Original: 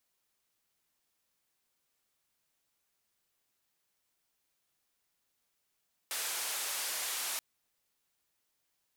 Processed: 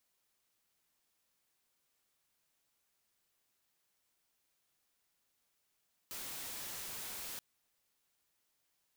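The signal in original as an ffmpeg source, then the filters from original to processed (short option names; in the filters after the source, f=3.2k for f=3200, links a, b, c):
-f lavfi -i "anoisesrc=c=white:d=1.28:r=44100:seed=1,highpass=f=600,lowpass=f=13000,volume=-29.2dB"
-af "aeval=exprs='(mod(94.4*val(0)+1,2)-1)/94.4':c=same"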